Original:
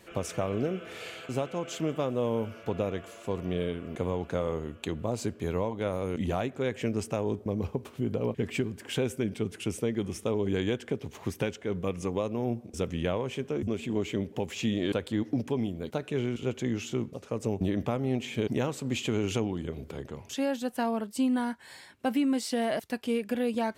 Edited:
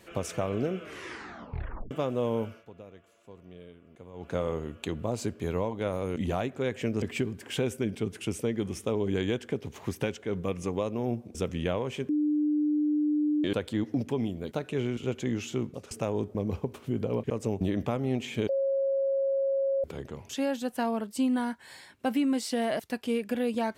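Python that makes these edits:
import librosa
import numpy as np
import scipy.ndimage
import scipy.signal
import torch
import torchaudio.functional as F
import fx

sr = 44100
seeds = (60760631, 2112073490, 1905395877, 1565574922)

y = fx.edit(x, sr, fx.tape_stop(start_s=0.8, length_s=1.11),
    fx.fade_down_up(start_s=2.43, length_s=1.93, db=-17.5, fade_s=0.23),
    fx.move(start_s=7.02, length_s=1.39, to_s=17.3),
    fx.bleep(start_s=13.48, length_s=1.35, hz=299.0, db=-23.0),
    fx.bleep(start_s=18.49, length_s=1.35, hz=545.0, db=-24.0), tone=tone)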